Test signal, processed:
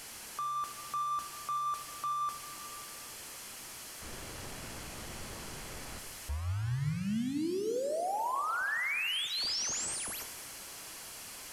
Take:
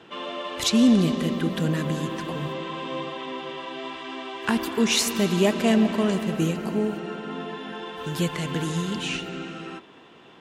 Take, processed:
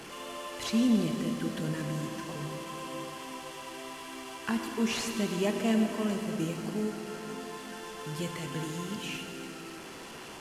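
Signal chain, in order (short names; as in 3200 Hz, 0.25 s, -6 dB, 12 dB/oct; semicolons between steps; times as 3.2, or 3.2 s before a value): delta modulation 64 kbps, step -30.5 dBFS; notch 3700 Hz, Q 11; plate-style reverb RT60 2 s, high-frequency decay 0.8×, DRR 6 dB; gain -9 dB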